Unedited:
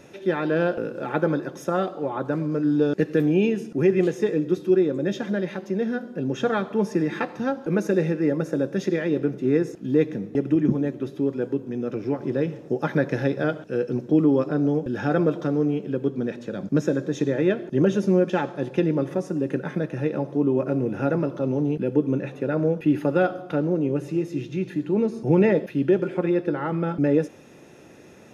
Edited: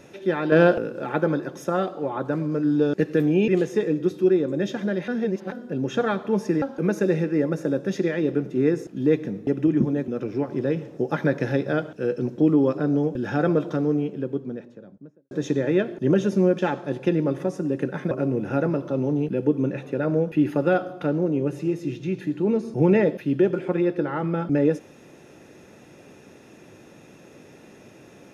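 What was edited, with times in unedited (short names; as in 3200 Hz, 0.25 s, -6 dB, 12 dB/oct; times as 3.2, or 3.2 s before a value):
0.52–0.78 gain +6.5 dB
3.48–3.94 cut
5.54–5.98 reverse
7.08–7.5 cut
10.96–11.79 cut
15.47–17.02 studio fade out
19.82–20.6 cut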